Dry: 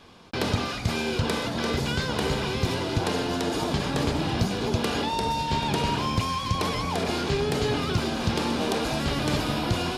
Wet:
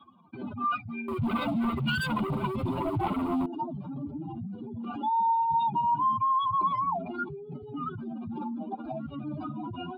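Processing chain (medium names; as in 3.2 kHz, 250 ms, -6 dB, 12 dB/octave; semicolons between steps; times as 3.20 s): spectral contrast enhancement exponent 3.5; high-pass 260 Hz 12 dB/octave; peaking EQ 1.4 kHz +12 dB 0.55 oct; 1.08–3.46 s: waveshaping leveller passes 3; static phaser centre 1.7 kHz, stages 6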